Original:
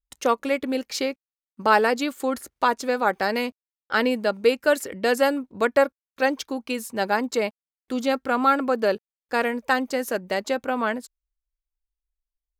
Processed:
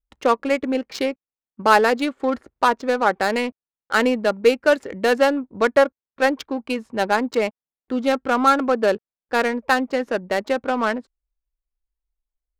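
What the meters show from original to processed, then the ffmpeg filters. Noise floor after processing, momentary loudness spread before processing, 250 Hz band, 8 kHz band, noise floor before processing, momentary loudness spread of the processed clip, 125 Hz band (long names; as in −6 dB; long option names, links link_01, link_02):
below −85 dBFS, 8 LU, +3.5 dB, −1.0 dB, below −85 dBFS, 9 LU, can't be measured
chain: -af "adynamicsmooth=sensitivity=3:basefreq=1400,volume=3.5dB"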